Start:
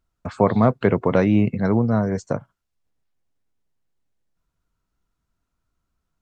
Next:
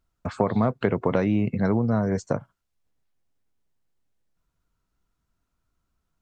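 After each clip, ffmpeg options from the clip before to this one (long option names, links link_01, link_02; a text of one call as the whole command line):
ffmpeg -i in.wav -af "acompressor=threshold=-18dB:ratio=6" out.wav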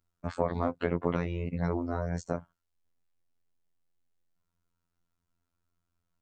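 ffmpeg -i in.wav -af "afftfilt=real='hypot(re,im)*cos(PI*b)':imag='0':win_size=2048:overlap=0.75,volume=-2.5dB" out.wav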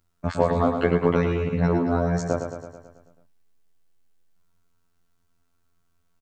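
ffmpeg -i in.wav -filter_complex "[0:a]asplit=2[link_01][link_02];[link_02]volume=25.5dB,asoftclip=hard,volume=-25.5dB,volume=-9dB[link_03];[link_01][link_03]amix=inputs=2:normalize=0,aecho=1:1:109|218|327|436|545|654|763|872:0.447|0.264|0.155|0.0917|0.0541|0.0319|0.0188|0.0111,volume=6.5dB" out.wav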